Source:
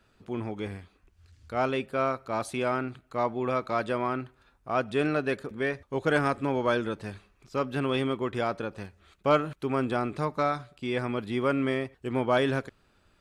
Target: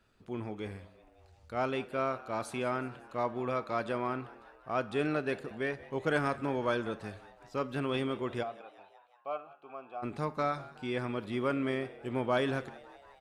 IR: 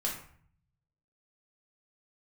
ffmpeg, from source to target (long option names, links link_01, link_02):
-filter_complex "[0:a]asplit=3[link_01][link_02][link_03];[link_01]afade=type=out:start_time=8.42:duration=0.02[link_04];[link_02]asplit=3[link_05][link_06][link_07];[link_05]bandpass=frequency=730:width_type=q:width=8,volume=0dB[link_08];[link_06]bandpass=frequency=1090:width_type=q:width=8,volume=-6dB[link_09];[link_07]bandpass=frequency=2440:width_type=q:width=8,volume=-9dB[link_10];[link_08][link_09][link_10]amix=inputs=3:normalize=0,afade=type=in:start_time=8.42:duration=0.02,afade=type=out:start_time=10.02:duration=0.02[link_11];[link_03]afade=type=in:start_time=10.02:duration=0.02[link_12];[link_04][link_11][link_12]amix=inputs=3:normalize=0,asplit=6[link_13][link_14][link_15][link_16][link_17][link_18];[link_14]adelay=184,afreqshift=94,volume=-20dB[link_19];[link_15]adelay=368,afreqshift=188,volume=-24dB[link_20];[link_16]adelay=552,afreqshift=282,volume=-28dB[link_21];[link_17]adelay=736,afreqshift=376,volume=-32dB[link_22];[link_18]adelay=920,afreqshift=470,volume=-36.1dB[link_23];[link_13][link_19][link_20][link_21][link_22][link_23]amix=inputs=6:normalize=0,asplit=2[link_24][link_25];[1:a]atrim=start_sample=2205,afade=type=out:start_time=0.29:duration=0.01,atrim=end_sample=13230,adelay=33[link_26];[link_25][link_26]afir=irnorm=-1:irlink=0,volume=-21.5dB[link_27];[link_24][link_27]amix=inputs=2:normalize=0,volume=-5dB"